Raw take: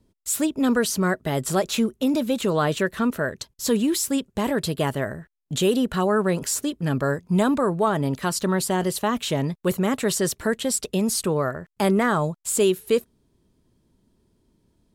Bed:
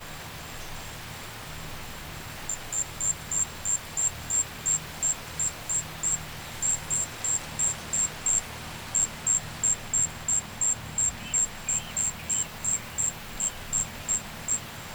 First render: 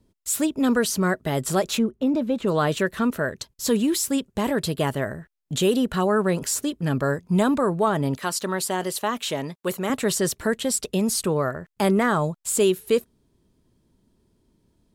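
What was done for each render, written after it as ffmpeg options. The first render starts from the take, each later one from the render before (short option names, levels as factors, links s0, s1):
-filter_complex "[0:a]asplit=3[s0][s1][s2];[s0]afade=t=out:st=1.77:d=0.02[s3];[s1]lowpass=f=1200:p=1,afade=t=in:st=1.77:d=0.02,afade=t=out:st=2.46:d=0.02[s4];[s2]afade=t=in:st=2.46:d=0.02[s5];[s3][s4][s5]amix=inputs=3:normalize=0,asettb=1/sr,asplit=3[s6][s7][s8];[s6]atrim=end=8.174[s9];[s7]atrim=start=8.17:end=9.9,asetpts=PTS-STARTPTS,afade=t=in:d=0.004:c=qsin,afade=t=out:st=1.726:d=0.004:c=qsin,highpass=f=410:p=1[s10];[s8]atrim=start=9.896[s11];[s9][s10]acrossfade=d=0.004:c1=hsin:c2=qsin[s12];[s12][s11]acrossfade=d=0.004:c1=qsin:c2=hsin"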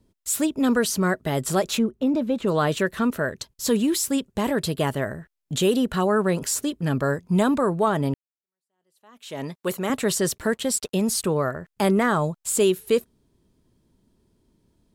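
-filter_complex "[0:a]asettb=1/sr,asplit=3[s0][s1][s2];[s0]atrim=end=10.384[s3];[s1]atrim=start=10.38:end=11.23,asetpts=PTS-STARTPTS,afade=t=in:d=0.004:c=qsin,afade=t=out:st=0.846:d=0.004:c=qsin,aeval=exprs='sgn(val(0))*max(abs(val(0))-0.00211,0)':c=same[s4];[s2]atrim=start=11.226[s5];[s3][s4]acrossfade=d=0.004:c1=hsin:c2=qsin[s6];[s6][s5]acrossfade=d=0.004:c1=qsin:c2=hsin,asplit=2[s7][s8];[s7]atrim=end=8.14,asetpts=PTS-STARTPTS,afade=t=out:st=8.136:d=0.004:c=hsin[s9];[s8]atrim=start=8.14,asetpts=PTS-STARTPTS,afade=t=in:d=1.29:c=exp[s10];[s9][s10]concat=n=2:v=0:a=1"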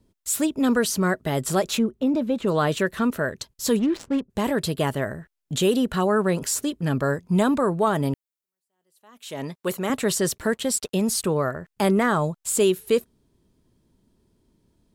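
-filter_complex "[0:a]asplit=3[s0][s1][s2];[s0]afade=t=out:st=3.78:d=0.02[s3];[s1]adynamicsmooth=sensitivity=2.5:basefreq=540,afade=t=in:st=3.78:d=0.02,afade=t=out:st=4.29:d=0.02[s4];[s2]afade=t=in:st=4.29:d=0.02[s5];[s3][s4][s5]amix=inputs=3:normalize=0,asettb=1/sr,asplit=3[s6][s7][s8];[s6]atrim=end=7.864[s9];[s7]atrim=start=7.86:end=9.34,asetpts=PTS-STARTPTS,afade=t=in:d=0.004:c=qsin,afade=t=out:st=1.476:d=0.004:c=qsin,highshelf=f=7600:g=7[s10];[s8]atrim=start=9.336[s11];[s9][s10]acrossfade=d=0.004:c1=hsin:c2=qsin[s12];[s12][s11]acrossfade=d=0.004:c1=qsin:c2=hsin"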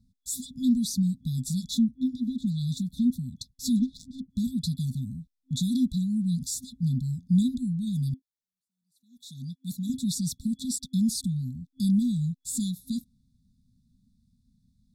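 -af "afftfilt=real='re*(1-between(b*sr/4096,260,3400))':imag='im*(1-between(b*sr/4096,260,3400))':win_size=4096:overlap=0.75,highshelf=f=5500:g=-10.5"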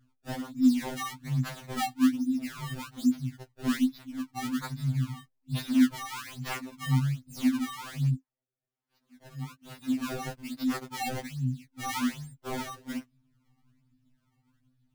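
-af "acrusher=samples=25:mix=1:aa=0.000001:lfo=1:lforange=40:lforate=1.2,afftfilt=real='re*2.45*eq(mod(b,6),0)':imag='im*2.45*eq(mod(b,6),0)':win_size=2048:overlap=0.75"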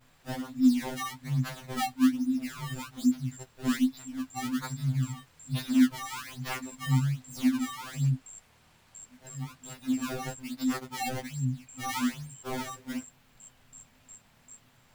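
-filter_complex "[1:a]volume=0.0668[s0];[0:a][s0]amix=inputs=2:normalize=0"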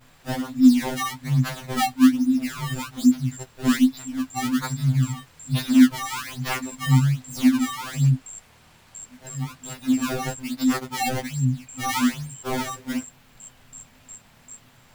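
-af "volume=2.51"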